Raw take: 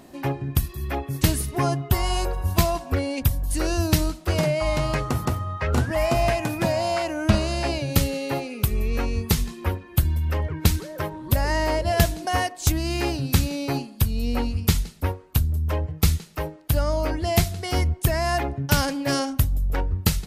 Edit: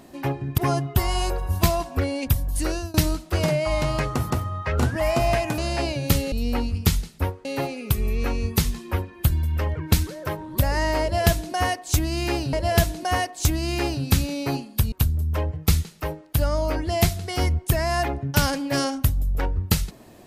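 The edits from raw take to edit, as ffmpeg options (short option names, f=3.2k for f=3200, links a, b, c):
-filter_complex "[0:a]asplit=8[a][b][c][d][e][f][g][h];[a]atrim=end=0.582[i];[b]atrim=start=1.528:end=3.89,asetpts=PTS-STARTPTS,afade=t=out:st=2.072:d=0.29:silence=0.0794328[j];[c]atrim=start=3.89:end=6.532,asetpts=PTS-STARTPTS,afade=t=in:d=0.004:c=hsin:silence=0.0794328[k];[d]atrim=start=7.438:end=8.182[l];[e]atrim=start=14.138:end=15.272[m];[f]atrim=start=8.178:end=13.262[n];[g]atrim=start=11.748:end=14.142[o];[h]atrim=start=15.268[p];[j][k]concat=n=2:v=0:a=1[q];[i][q]acrossfade=d=0.004:c1=hsin:c2=hsin[r];[r][l]acrossfade=d=0.004:c1=hsin:c2=hsin[s];[s][m]acrossfade=d=0.004:c1=hsin:c2=hsin[t];[t][n]acrossfade=d=0.004:c1=hsin:c2=hsin[u];[u][o]acrossfade=d=0.004:c1=hsin:c2=hsin[v];[v][p]acrossfade=d=0.004:c1=hsin:c2=hsin"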